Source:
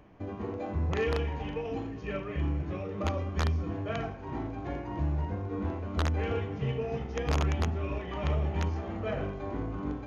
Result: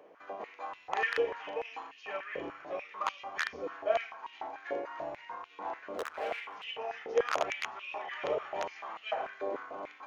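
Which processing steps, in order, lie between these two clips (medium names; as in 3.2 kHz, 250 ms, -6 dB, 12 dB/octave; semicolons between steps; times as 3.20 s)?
5.93–6.64 s: hard clipper -30.5 dBFS, distortion -17 dB; step-sequenced high-pass 6.8 Hz 490–2800 Hz; trim -2 dB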